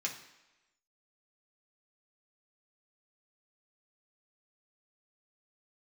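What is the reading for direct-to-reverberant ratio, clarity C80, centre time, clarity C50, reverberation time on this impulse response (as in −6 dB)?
−2.0 dB, 12.0 dB, 20 ms, 9.0 dB, 1.0 s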